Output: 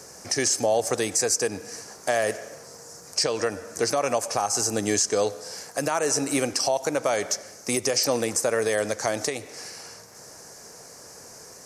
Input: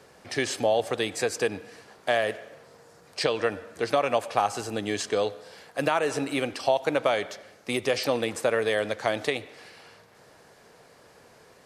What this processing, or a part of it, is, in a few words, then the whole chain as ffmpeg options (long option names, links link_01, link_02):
over-bright horn tweeter: -af "highshelf=frequency=4500:width_type=q:width=3:gain=9.5,alimiter=limit=-17.5dB:level=0:latency=1:release=278,volume=5.5dB"